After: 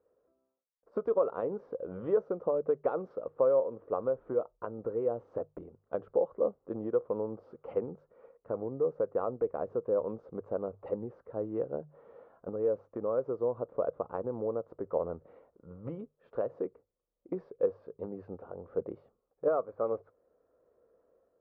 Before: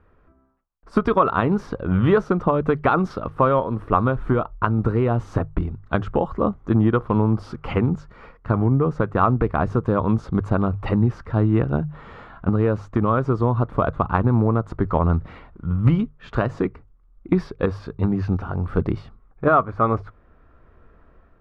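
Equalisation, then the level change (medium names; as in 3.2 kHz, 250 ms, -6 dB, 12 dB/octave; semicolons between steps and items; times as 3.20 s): band-pass filter 510 Hz, Q 5.4; -2.0 dB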